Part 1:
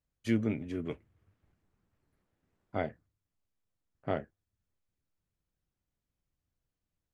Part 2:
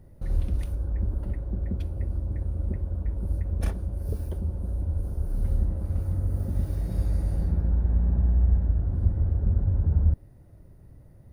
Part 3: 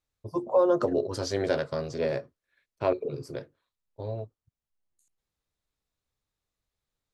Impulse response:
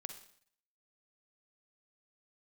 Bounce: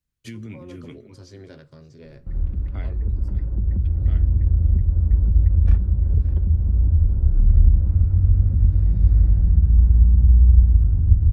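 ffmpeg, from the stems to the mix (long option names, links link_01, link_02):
-filter_complex "[0:a]alimiter=limit=-24dB:level=0:latency=1,volume=3dB,asplit=3[link_01][link_02][link_03];[link_02]volume=-13dB[link_04];[link_03]volume=-19dB[link_05];[1:a]lowpass=1400,dynaudnorm=framelen=280:gausssize=11:maxgain=11.5dB,adelay=2050,volume=1.5dB,asplit=2[link_06][link_07];[link_07]volume=-18dB[link_08];[2:a]lowshelf=frequency=470:gain=9,volume=-16.5dB,asplit=3[link_09][link_10][link_11];[link_10]volume=-9dB[link_12];[link_11]volume=-20dB[link_13];[3:a]atrim=start_sample=2205[link_14];[link_04][link_12]amix=inputs=2:normalize=0[link_15];[link_15][link_14]afir=irnorm=-1:irlink=0[link_16];[link_05][link_08][link_13]amix=inputs=3:normalize=0,aecho=0:1:574:1[link_17];[link_01][link_06][link_09][link_16][link_17]amix=inputs=5:normalize=0,equalizer=frequency=630:width_type=o:width=1.5:gain=-11,acrossover=split=130|3000[link_18][link_19][link_20];[link_19]acompressor=threshold=-36dB:ratio=6[link_21];[link_18][link_21][link_20]amix=inputs=3:normalize=0"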